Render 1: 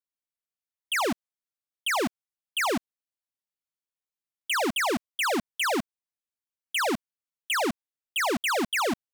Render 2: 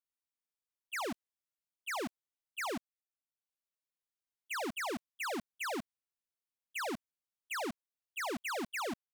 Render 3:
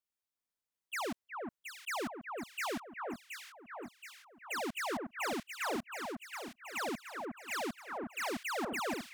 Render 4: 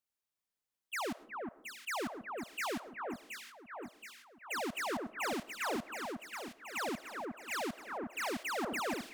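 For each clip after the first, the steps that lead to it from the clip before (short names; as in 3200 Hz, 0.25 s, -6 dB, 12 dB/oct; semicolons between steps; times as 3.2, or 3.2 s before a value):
gate -26 dBFS, range -44 dB; backwards sustainer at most 42 dB/s; gain -1 dB
echo with dull and thin repeats by turns 0.362 s, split 1700 Hz, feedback 75%, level -3.5 dB
reverb RT60 0.60 s, pre-delay 65 ms, DRR 18.5 dB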